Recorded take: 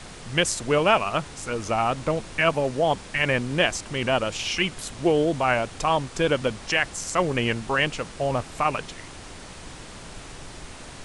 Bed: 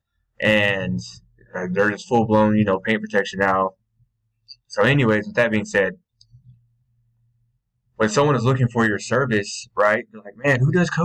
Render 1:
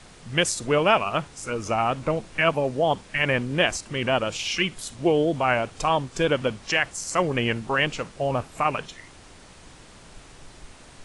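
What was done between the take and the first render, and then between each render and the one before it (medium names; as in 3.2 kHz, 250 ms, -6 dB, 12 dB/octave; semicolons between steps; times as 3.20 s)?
noise print and reduce 7 dB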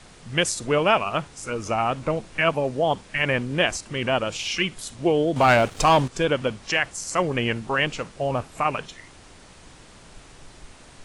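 5.36–6.08 s: waveshaping leveller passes 2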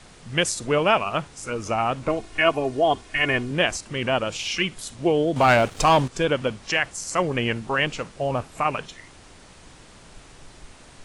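2.08–3.51 s: comb 2.8 ms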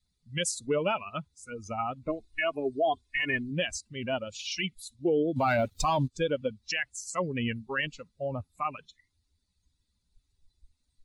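expander on every frequency bin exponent 2; peak limiter -19 dBFS, peak gain reduction 9 dB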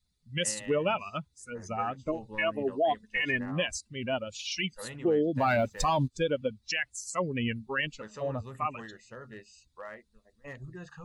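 add bed -26.5 dB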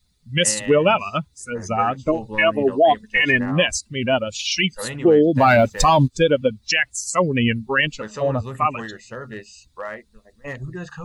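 trim +12 dB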